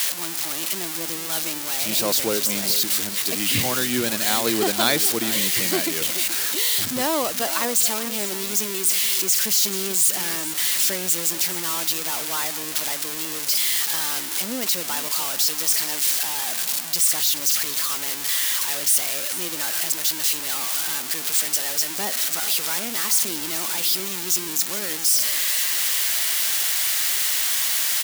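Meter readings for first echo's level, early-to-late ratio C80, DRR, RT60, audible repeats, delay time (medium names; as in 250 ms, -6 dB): -14.0 dB, no reverb, no reverb, no reverb, 2, 429 ms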